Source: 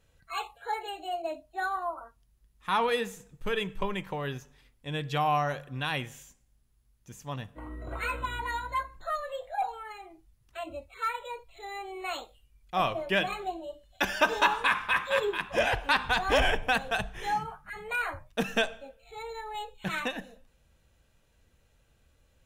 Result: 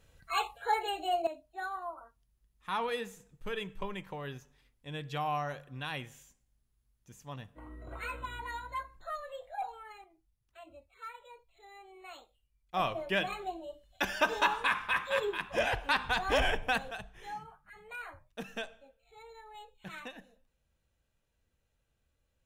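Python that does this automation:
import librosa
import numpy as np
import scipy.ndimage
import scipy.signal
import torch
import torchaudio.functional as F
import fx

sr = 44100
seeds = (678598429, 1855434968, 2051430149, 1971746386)

y = fx.gain(x, sr, db=fx.steps((0.0, 3.0), (1.27, -7.0), (10.04, -14.0), (12.74, -4.0), (16.91, -12.5)))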